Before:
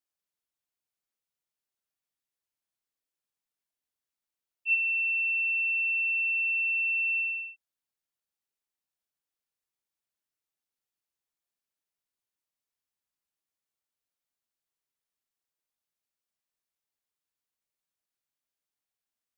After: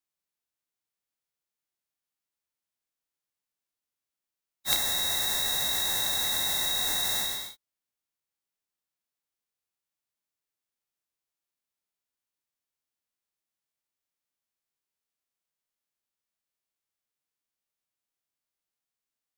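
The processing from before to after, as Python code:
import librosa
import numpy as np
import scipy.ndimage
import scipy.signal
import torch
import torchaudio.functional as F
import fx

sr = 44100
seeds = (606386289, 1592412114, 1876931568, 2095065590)

y = fx.envelope_flatten(x, sr, power=0.1)
y = fx.formant_shift(y, sr, semitones=6)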